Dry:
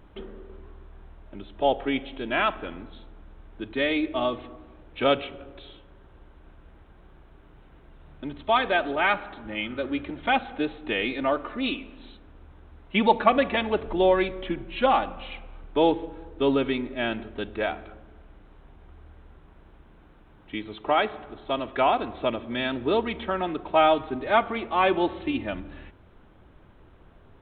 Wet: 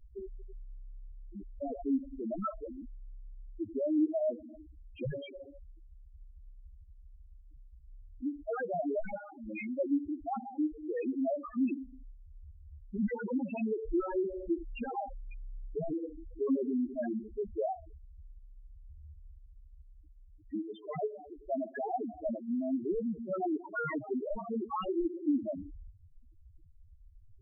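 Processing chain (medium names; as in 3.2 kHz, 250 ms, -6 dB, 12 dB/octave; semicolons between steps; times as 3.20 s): wavefolder -22 dBFS; loudest bins only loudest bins 2; trim +1.5 dB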